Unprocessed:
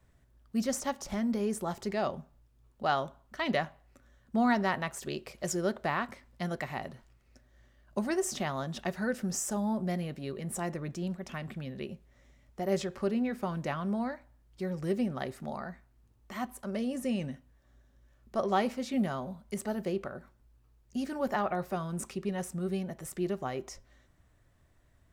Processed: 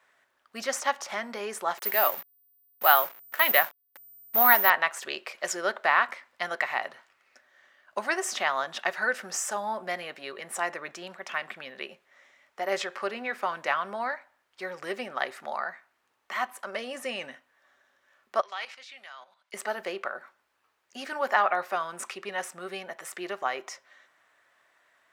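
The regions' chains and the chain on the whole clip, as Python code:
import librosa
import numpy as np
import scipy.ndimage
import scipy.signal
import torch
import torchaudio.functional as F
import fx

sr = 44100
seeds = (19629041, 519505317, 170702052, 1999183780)

y = fx.chain(x, sr, fx.delta_hold(step_db=-48.0),
    fx.resample_bad(factor=3, down='none', up='zero_stuff'), at=(1.78, 4.7))
y = fx.chain(y, sr, fx.bandpass_q(hz=3900.0, q=0.81),
    fx.level_steps(step_db=11), at=(18.41, 19.54))
y = scipy.signal.sosfilt(scipy.signal.butter(2, 540.0, 'highpass', fs=sr, output='sos'), y)
y = fx.peak_eq(y, sr, hz=1700.0, db=12.5, octaves=2.8)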